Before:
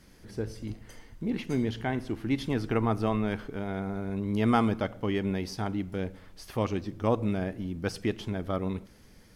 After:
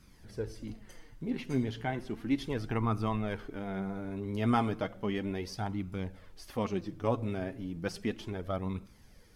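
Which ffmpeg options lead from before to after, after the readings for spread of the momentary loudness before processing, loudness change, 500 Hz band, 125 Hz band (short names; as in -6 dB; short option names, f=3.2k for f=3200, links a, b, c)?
10 LU, -4.0 dB, -4.5 dB, -3.5 dB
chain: -af "flanger=delay=0.8:depth=6.9:regen=35:speed=0.34:shape=sinusoidal"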